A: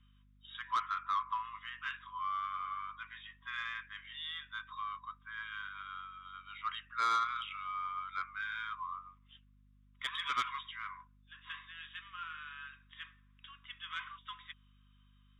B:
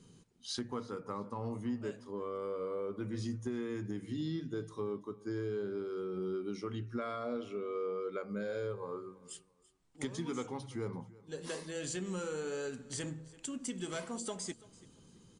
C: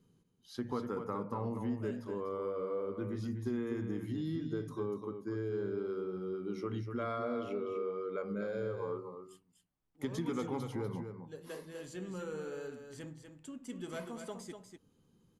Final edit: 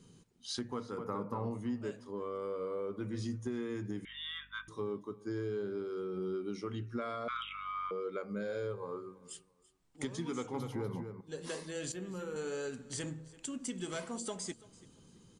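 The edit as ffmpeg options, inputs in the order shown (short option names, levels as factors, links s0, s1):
-filter_complex "[2:a]asplit=3[s0][s1][s2];[0:a]asplit=2[s3][s4];[1:a]asplit=6[s5][s6][s7][s8][s9][s10];[s5]atrim=end=0.982[s11];[s0]atrim=start=0.978:end=1.512[s12];[s6]atrim=start=1.508:end=4.052[s13];[s3]atrim=start=4.048:end=4.682[s14];[s7]atrim=start=4.678:end=7.282[s15];[s4]atrim=start=7.278:end=7.912[s16];[s8]atrim=start=7.908:end=10.542[s17];[s1]atrim=start=10.538:end=11.212[s18];[s9]atrim=start=11.208:end=11.922[s19];[s2]atrim=start=11.918:end=12.362[s20];[s10]atrim=start=12.358[s21];[s11][s12]acrossfade=d=0.004:c1=hsin:c2=hsin[s22];[s22][s13]acrossfade=d=0.004:c1=hsin:c2=hsin[s23];[s23][s14]acrossfade=d=0.004:c1=hsin:c2=hsin[s24];[s24][s15]acrossfade=d=0.004:c1=hsin:c2=hsin[s25];[s25][s16]acrossfade=d=0.004:c1=hsin:c2=hsin[s26];[s26][s17]acrossfade=d=0.004:c1=hsin:c2=hsin[s27];[s27][s18]acrossfade=d=0.004:c1=hsin:c2=hsin[s28];[s28][s19]acrossfade=d=0.004:c1=hsin:c2=hsin[s29];[s29][s20]acrossfade=d=0.004:c1=hsin:c2=hsin[s30];[s30][s21]acrossfade=d=0.004:c1=hsin:c2=hsin"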